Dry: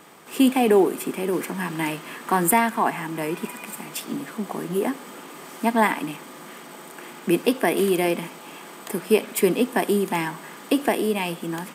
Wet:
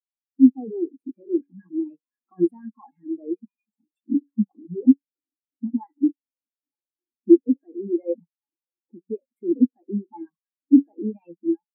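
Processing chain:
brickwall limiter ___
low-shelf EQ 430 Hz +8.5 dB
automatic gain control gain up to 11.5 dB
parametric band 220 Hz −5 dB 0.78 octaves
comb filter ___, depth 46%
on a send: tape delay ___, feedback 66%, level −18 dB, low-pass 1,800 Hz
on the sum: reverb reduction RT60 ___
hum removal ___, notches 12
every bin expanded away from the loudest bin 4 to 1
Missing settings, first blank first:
−19 dBFS, 3.7 ms, 199 ms, 0.82 s, 94.09 Hz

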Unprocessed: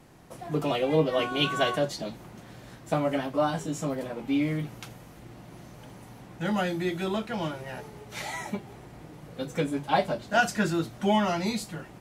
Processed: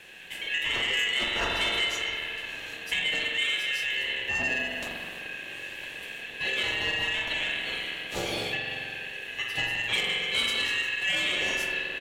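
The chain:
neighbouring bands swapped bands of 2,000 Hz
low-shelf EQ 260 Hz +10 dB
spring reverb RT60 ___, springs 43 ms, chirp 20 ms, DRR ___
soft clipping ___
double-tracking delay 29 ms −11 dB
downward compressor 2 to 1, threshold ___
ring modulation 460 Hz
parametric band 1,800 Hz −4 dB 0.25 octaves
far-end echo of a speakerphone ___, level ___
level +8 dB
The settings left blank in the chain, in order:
1.5 s, 0 dB, −18 dBFS, −36 dBFS, 200 ms, −11 dB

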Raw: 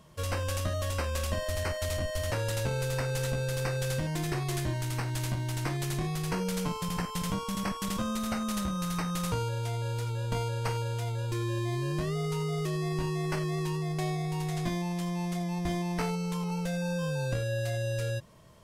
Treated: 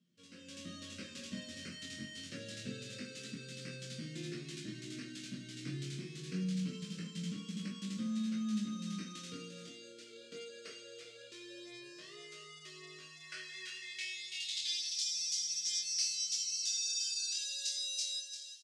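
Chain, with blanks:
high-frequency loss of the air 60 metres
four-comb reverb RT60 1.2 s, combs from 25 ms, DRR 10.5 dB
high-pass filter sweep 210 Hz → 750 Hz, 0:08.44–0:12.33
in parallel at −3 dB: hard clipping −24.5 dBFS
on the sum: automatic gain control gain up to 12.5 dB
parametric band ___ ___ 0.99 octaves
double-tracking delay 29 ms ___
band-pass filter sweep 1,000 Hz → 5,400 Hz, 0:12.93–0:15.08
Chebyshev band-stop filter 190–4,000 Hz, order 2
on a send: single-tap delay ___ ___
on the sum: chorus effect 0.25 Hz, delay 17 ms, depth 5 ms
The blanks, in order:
7,900 Hz, +7 dB, −11.5 dB, 347 ms, −9.5 dB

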